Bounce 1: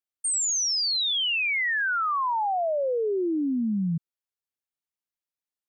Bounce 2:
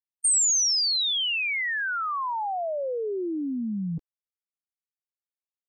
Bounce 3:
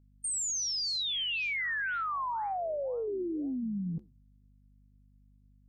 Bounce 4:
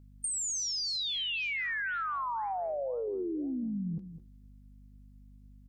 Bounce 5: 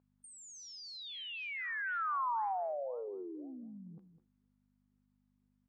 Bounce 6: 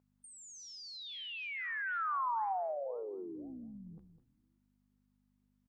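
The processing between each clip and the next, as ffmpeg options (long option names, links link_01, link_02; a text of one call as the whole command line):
ffmpeg -i in.wav -af "afftfilt=real='re*gte(hypot(re,im),0.0282)':imag='im*gte(hypot(re,im),0.0282)':win_size=1024:overlap=0.75,highshelf=frequency=5100:gain=11,areverse,acompressor=mode=upward:threshold=-29dB:ratio=2.5,areverse,volume=-3.5dB" out.wav
ffmpeg -i in.wav -af "alimiter=level_in=1dB:limit=-24dB:level=0:latency=1,volume=-1dB,aeval=exprs='val(0)+0.00158*(sin(2*PI*50*n/s)+sin(2*PI*2*50*n/s)/2+sin(2*PI*3*50*n/s)/3+sin(2*PI*4*50*n/s)/4+sin(2*PI*5*50*n/s)/5)':channel_layout=same,flanger=delay=6.8:depth=9.5:regen=-90:speed=2:shape=sinusoidal" out.wav
ffmpeg -i in.wav -filter_complex "[0:a]acompressor=threshold=-43dB:ratio=3,asplit=2[link_01][link_02];[link_02]adelay=204.1,volume=-12dB,highshelf=frequency=4000:gain=-4.59[link_03];[link_01][link_03]amix=inputs=2:normalize=0,volume=7.5dB" out.wav
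ffmpeg -i in.wav -af "bandpass=frequency=1000:width_type=q:width=1.2:csg=0" out.wav
ffmpeg -i in.wav -filter_complex "[0:a]asplit=6[link_01][link_02][link_03][link_04][link_05][link_06];[link_02]adelay=119,afreqshift=-100,volume=-19.5dB[link_07];[link_03]adelay=238,afreqshift=-200,volume=-23.7dB[link_08];[link_04]adelay=357,afreqshift=-300,volume=-27.8dB[link_09];[link_05]adelay=476,afreqshift=-400,volume=-32dB[link_10];[link_06]adelay=595,afreqshift=-500,volume=-36.1dB[link_11];[link_01][link_07][link_08][link_09][link_10][link_11]amix=inputs=6:normalize=0" out.wav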